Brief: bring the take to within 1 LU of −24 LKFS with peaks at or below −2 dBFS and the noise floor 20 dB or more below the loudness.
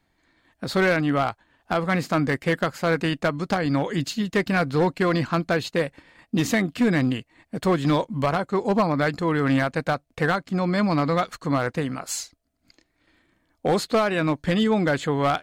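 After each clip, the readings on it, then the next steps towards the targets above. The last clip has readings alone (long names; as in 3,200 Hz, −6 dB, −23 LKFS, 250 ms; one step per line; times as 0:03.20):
share of clipped samples 1.2%; peaks flattened at −14.5 dBFS; integrated loudness −23.5 LKFS; sample peak −14.5 dBFS; target loudness −24.0 LKFS
→ clipped peaks rebuilt −14.5 dBFS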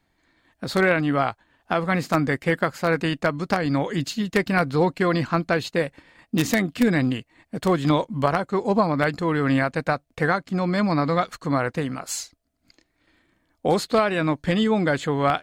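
share of clipped samples 0.0%; integrated loudness −23.0 LKFS; sample peak −5.5 dBFS; target loudness −24.0 LKFS
→ level −1 dB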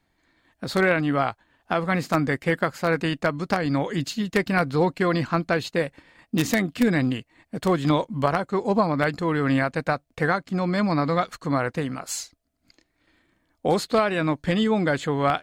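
integrated loudness −24.0 LKFS; sample peak −6.5 dBFS; background noise floor −72 dBFS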